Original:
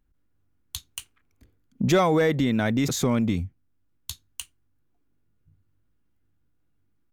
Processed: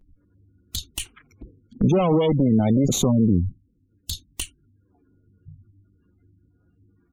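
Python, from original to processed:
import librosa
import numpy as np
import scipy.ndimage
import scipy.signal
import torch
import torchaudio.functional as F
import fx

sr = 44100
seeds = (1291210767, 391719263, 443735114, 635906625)

p1 = fx.cheby_harmonics(x, sr, harmonics=(5, 6), levels_db=(-18, -12), full_scale_db=-10.5)
p2 = fx.dynamic_eq(p1, sr, hz=200.0, q=2.7, threshold_db=-35.0, ratio=4.0, max_db=4)
p3 = fx.over_compress(p2, sr, threshold_db=-37.0, ratio=-1.0)
p4 = p2 + (p3 * librosa.db_to_amplitude(-1.0))
p5 = fx.peak_eq(p4, sr, hz=1000.0, db=-11.0, octaves=0.69, at=(3.11, 4.1))
p6 = fx.spec_gate(p5, sr, threshold_db=-20, keep='strong')
y = fx.env_flanger(p6, sr, rest_ms=11.8, full_db=-18.0)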